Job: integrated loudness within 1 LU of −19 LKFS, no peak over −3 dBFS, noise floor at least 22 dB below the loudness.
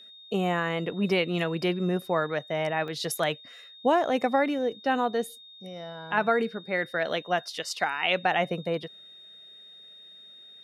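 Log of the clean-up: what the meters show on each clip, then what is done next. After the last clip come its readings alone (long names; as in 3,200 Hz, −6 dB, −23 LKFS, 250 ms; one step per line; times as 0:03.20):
number of dropouts 1; longest dropout 1.5 ms; interfering tone 3,700 Hz; level of the tone −47 dBFS; integrated loudness −27.5 LKFS; sample peak −10.0 dBFS; target loudness −19.0 LKFS
→ repair the gap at 0:02.88, 1.5 ms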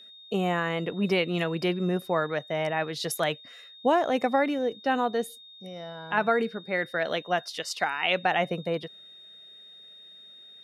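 number of dropouts 0; interfering tone 3,700 Hz; level of the tone −47 dBFS
→ notch filter 3,700 Hz, Q 30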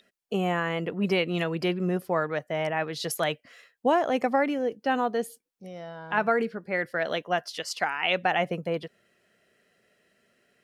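interfering tone none found; integrated loudness −27.5 LKFS; sample peak −10.0 dBFS; target loudness −19.0 LKFS
→ level +8.5 dB
brickwall limiter −3 dBFS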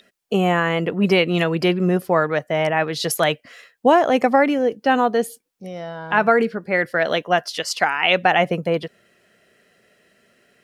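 integrated loudness −19.0 LKFS; sample peak −3.0 dBFS; background noise floor −68 dBFS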